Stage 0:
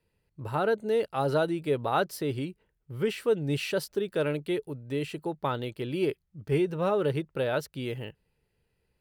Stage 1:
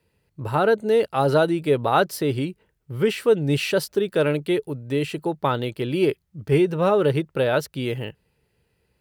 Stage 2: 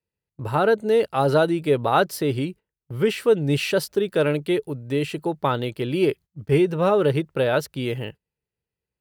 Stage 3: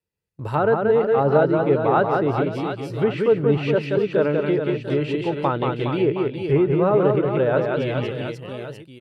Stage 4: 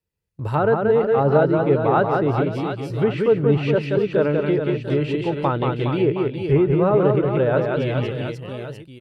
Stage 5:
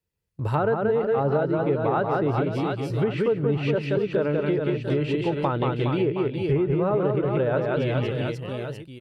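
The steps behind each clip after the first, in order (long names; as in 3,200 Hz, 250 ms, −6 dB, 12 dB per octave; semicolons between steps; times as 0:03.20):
high-pass filter 50 Hz; level +7.5 dB
noise gate −38 dBFS, range −20 dB
reverse bouncing-ball delay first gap 180 ms, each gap 1.3×, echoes 5; treble cut that deepens with the level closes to 1,700 Hz, closed at −16 dBFS
low-shelf EQ 86 Hz +11 dB
downward compressor 4 to 1, threshold −20 dBFS, peak gain reduction 8.5 dB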